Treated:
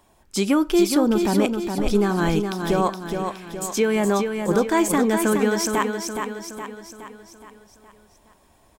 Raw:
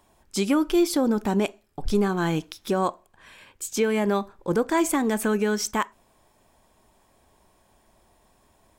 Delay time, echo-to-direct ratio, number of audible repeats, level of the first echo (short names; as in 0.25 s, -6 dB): 0.418 s, -4.5 dB, 5, -6.0 dB